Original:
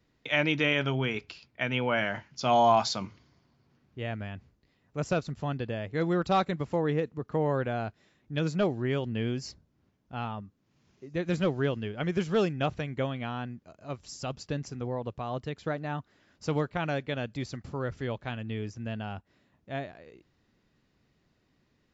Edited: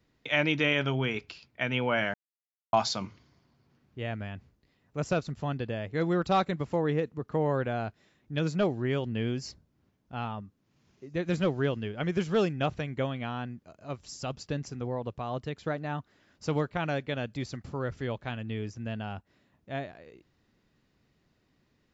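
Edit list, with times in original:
2.14–2.73 s: mute

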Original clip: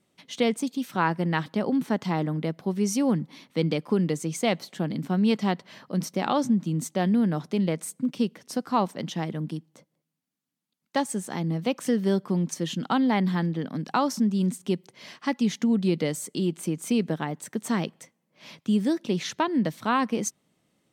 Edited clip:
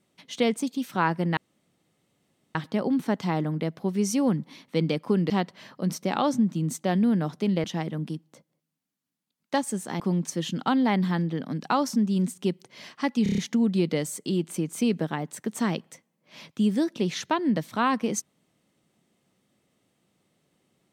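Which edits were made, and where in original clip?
1.37 s: insert room tone 1.18 s
4.12–5.41 s: delete
7.75–9.06 s: delete
11.42–12.24 s: delete
15.47 s: stutter 0.03 s, 6 plays

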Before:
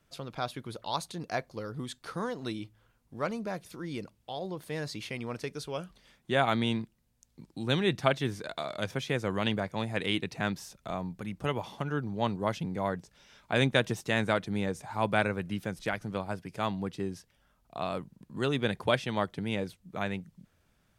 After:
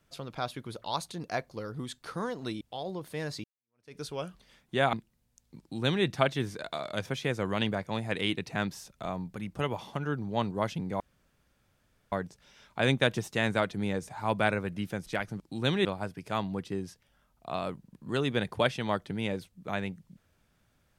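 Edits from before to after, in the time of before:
2.61–4.17 s: delete
5.00–5.53 s: fade in exponential
6.49–6.78 s: delete
7.45–7.90 s: copy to 16.13 s
12.85 s: insert room tone 1.12 s

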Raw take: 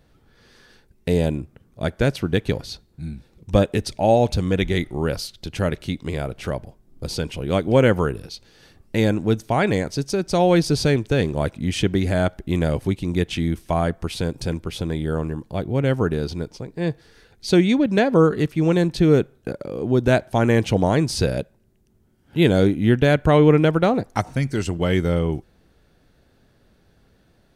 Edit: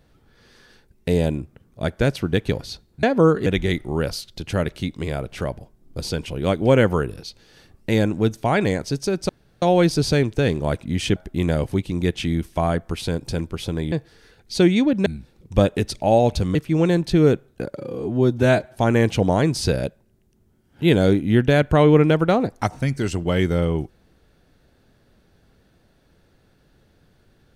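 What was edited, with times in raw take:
3.03–4.52 s: swap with 17.99–18.42 s
10.35 s: insert room tone 0.33 s
11.89–12.29 s: delete
15.05–16.85 s: delete
19.64–20.30 s: stretch 1.5×

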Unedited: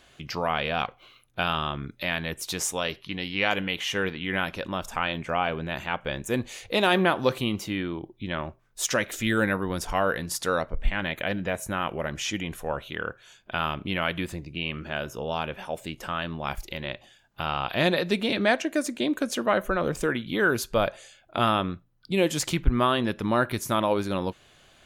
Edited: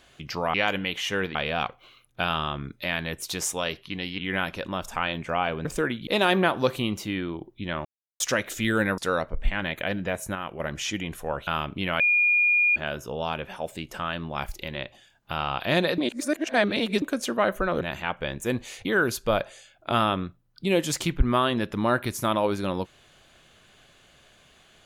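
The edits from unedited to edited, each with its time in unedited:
3.37–4.18 s: move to 0.54 s
5.65–6.69 s: swap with 19.90–20.32 s
8.47–8.82 s: mute
9.60–10.38 s: delete
11.75–12.00 s: gain -5.5 dB
12.87–13.56 s: delete
14.09–14.85 s: bleep 2.43 kHz -17.5 dBFS
18.07–19.11 s: reverse

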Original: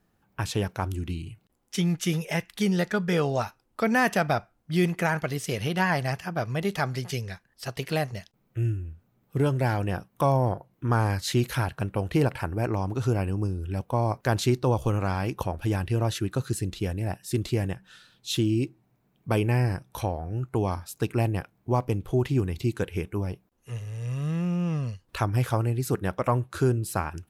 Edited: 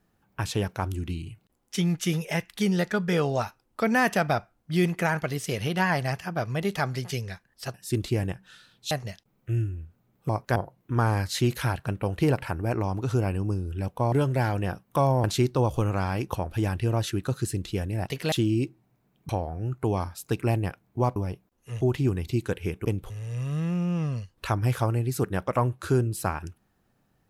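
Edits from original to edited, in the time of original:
7.74–7.99 s: swap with 17.15–18.32 s
9.37–10.49 s: swap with 14.05–14.32 s
19.29–20.00 s: delete
21.87–22.12 s: swap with 23.16–23.81 s

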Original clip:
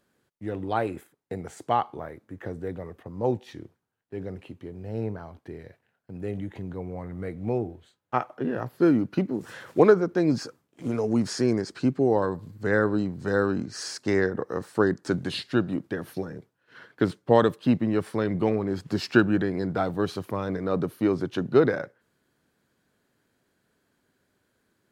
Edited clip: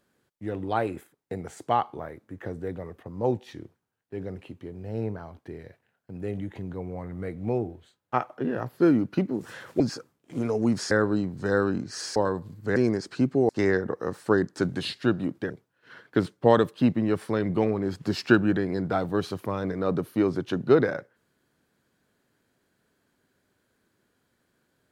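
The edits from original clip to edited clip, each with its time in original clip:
9.80–10.29 s: delete
11.40–12.13 s: swap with 12.73–13.98 s
15.99–16.35 s: delete

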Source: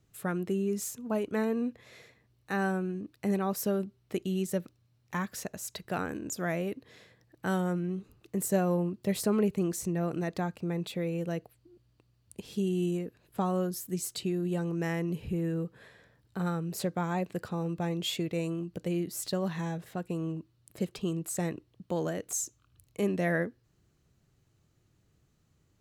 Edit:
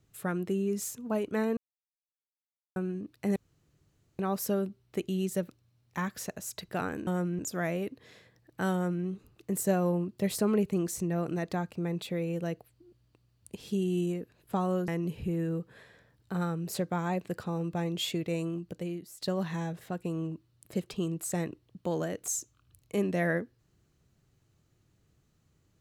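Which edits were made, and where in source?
1.57–2.76 s: mute
3.36 s: insert room tone 0.83 s
7.58–7.90 s: copy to 6.24 s
13.73–14.93 s: delete
18.61–19.27 s: fade out, to -18 dB

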